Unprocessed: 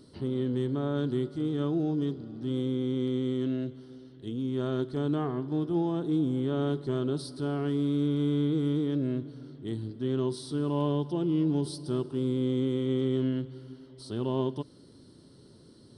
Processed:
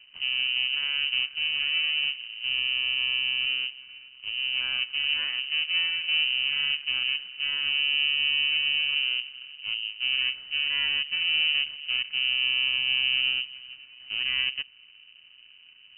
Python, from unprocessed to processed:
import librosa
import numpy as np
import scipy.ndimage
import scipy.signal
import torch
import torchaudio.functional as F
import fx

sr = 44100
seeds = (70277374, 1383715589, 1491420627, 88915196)

y = np.maximum(x, 0.0)
y = fx.freq_invert(y, sr, carrier_hz=3000)
y = F.gain(torch.from_numpy(y), 3.5).numpy()